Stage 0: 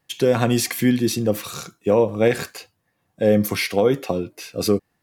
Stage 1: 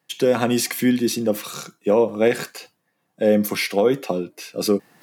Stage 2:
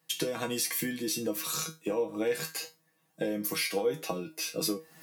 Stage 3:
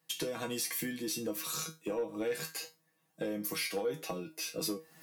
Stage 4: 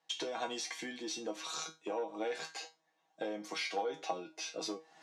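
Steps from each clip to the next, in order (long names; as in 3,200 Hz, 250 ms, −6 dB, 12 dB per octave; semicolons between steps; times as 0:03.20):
reversed playback; upward compression, threshold −39 dBFS; reversed playback; high-pass filter 150 Hz 24 dB per octave
high-shelf EQ 4,500 Hz +8.5 dB; downward compressor, threshold −25 dBFS, peak gain reduction 12.5 dB; tuned comb filter 160 Hz, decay 0.21 s, harmonics all, mix 90%; level +6.5 dB
soft clipping −21.5 dBFS, distortion −21 dB; level −3.5 dB
loudspeaker in its box 450–5,800 Hz, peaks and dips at 490 Hz −5 dB, 780 Hz +7 dB, 1,200 Hz −4 dB, 1,800 Hz −5 dB, 2,600 Hz −5 dB, 4,800 Hz −7 dB; level +3 dB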